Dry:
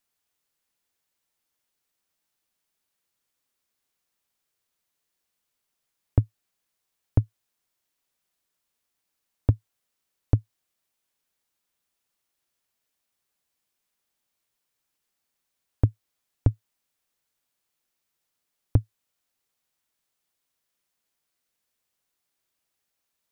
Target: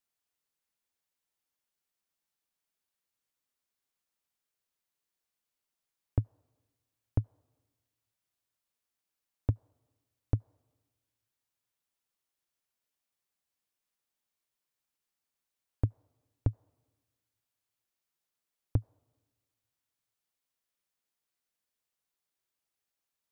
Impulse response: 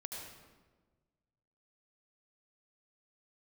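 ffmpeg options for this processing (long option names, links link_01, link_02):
-filter_complex "[0:a]asplit=2[link_01][link_02];[link_02]bandpass=frequency=1000:width_type=q:width=1.4:csg=0[link_03];[1:a]atrim=start_sample=2205[link_04];[link_03][link_04]afir=irnorm=-1:irlink=0,volume=-17.5dB[link_05];[link_01][link_05]amix=inputs=2:normalize=0,volume=-8dB"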